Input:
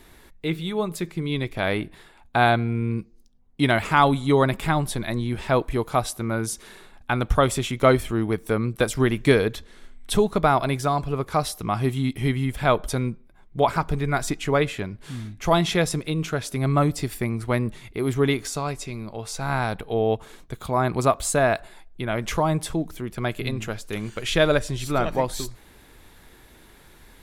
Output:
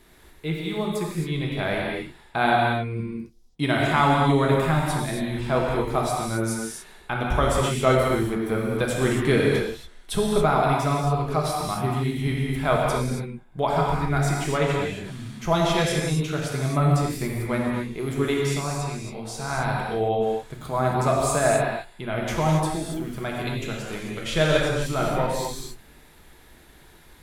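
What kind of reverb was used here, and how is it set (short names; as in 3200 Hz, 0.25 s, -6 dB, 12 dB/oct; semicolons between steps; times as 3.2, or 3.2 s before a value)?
non-linear reverb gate 0.3 s flat, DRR -3 dB; gain -5 dB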